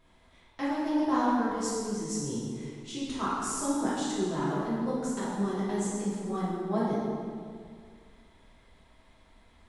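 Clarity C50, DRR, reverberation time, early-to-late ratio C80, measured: −2.0 dB, −9.5 dB, 2.1 s, 0.0 dB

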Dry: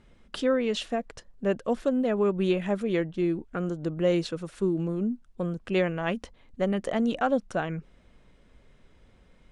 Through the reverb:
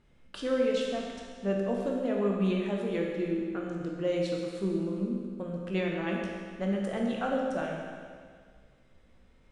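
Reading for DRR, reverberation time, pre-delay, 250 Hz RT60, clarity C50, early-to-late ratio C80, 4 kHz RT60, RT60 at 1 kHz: −2.0 dB, 1.9 s, 15 ms, 1.9 s, 0.5 dB, 2.0 dB, 1.8 s, 1.9 s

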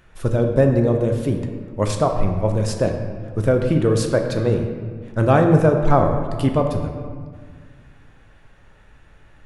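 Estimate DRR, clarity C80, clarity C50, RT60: 3.5 dB, 7.0 dB, 5.5 dB, 1.8 s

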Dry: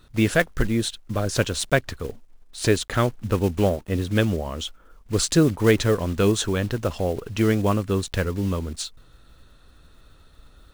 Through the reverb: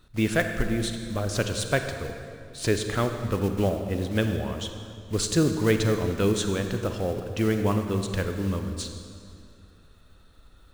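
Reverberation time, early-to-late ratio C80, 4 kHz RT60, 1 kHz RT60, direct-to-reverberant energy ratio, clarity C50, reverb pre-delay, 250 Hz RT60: 2.4 s, 7.5 dB, 1.8 s, 2.3 s, 6.0 dB, 6.5 dB, 32 ms, 2.6 s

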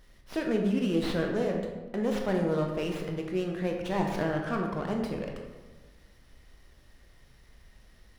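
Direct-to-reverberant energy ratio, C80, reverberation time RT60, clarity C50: 1.5 dB, 6.0 dB, 1.3 s, 4.0 dB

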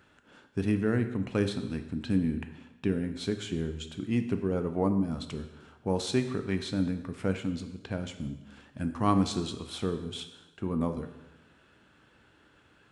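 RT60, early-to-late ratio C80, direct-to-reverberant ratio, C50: 1.0 s, 12.0 dB, 7.5 dB, 10.0 dB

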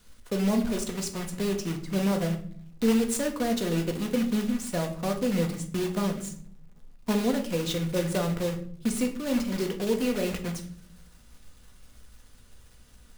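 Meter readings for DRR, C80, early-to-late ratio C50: 3.5 dB, 15.0 dB, 11.0 dB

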